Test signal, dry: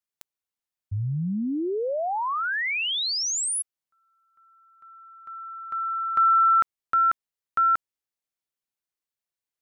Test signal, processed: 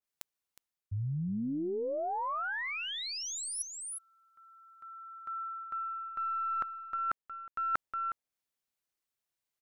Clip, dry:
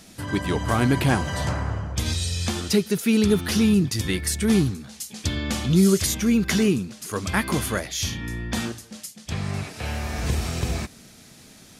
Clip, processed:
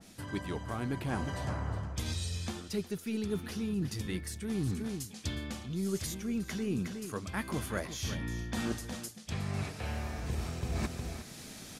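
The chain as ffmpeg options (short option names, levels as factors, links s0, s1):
-af "aeval=exprs='0.531*(cos(1*acos(clip(val(0)/0.531,-1,1)))-cos(1*PI/2))+0.015*(cos(3*acos(clip(val(0)/0.531,-1,1)))-cos(3*PI/2))+0.0075*(cos(6*acos(clip(val(0)/0.531,-1,1)))-cos(6*PI/2))':c=same,aecho=1:1:363:0.188,areverse,acompressor=threshold=0.02:ratio=12:attack=71:release=637:knee=1:detection=rms,areverse,adynamicequalizer=threshold=0.00251:dfrequency=1800:dqfactor=0.7:tfrequency=1800:tqfactor=0.7:attack=5:release=100:ratio=0.375:range=2.5:mode=cutabove:tftype=highshelf,volume=1.26"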